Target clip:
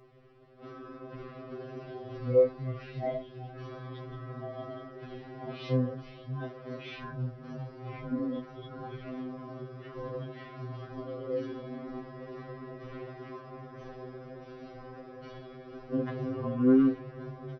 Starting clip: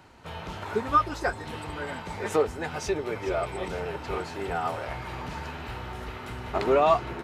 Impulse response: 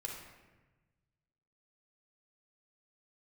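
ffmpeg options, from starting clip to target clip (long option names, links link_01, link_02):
-af "asetrate=18125,aresample=44100,bandreject=frequency=900:width=11,afftfilt=real='re*2.45*eq(mod(b,6),0)':imag='im*2.45*eq(mod(b,6),0)':win_size=2048:overlap=0.75,volume=-3dB"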